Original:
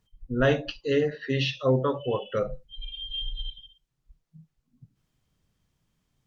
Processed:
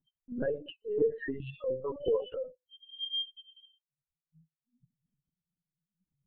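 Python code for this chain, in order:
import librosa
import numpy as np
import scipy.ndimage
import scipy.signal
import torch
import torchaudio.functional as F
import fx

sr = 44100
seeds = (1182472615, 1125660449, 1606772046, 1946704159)

y = fx.spec_expand(x, sr, power=2.4)
y = scipy.signal.sosfilt(scipy.signal.butter(4, 160.0, 'highpass', fs=sr, output='sos'), y)
y = fx.chopper(y, sr, hz=1.0, depth_pct=65, duty_pct=30)
y = fx.lpc_vocoder(y, sr, seeds[0], excitation='pitch_kept', order=16)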